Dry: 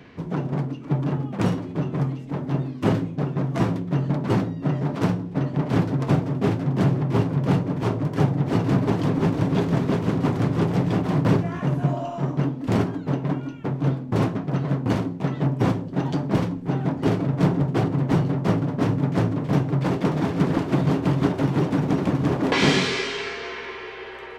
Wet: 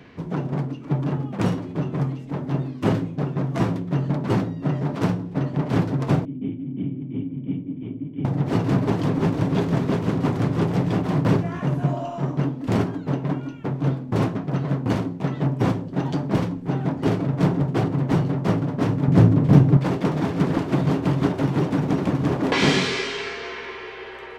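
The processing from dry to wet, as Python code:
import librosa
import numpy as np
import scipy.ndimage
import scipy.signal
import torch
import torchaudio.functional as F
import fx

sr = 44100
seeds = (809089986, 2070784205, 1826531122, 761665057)

y = fx.formant_cascade(x, sr, vowel='i', at=(6.25, 8.25))
y = fx.low_shelf(y, sr, hz=340.0, db=10.5, at=(19.08, 19.77))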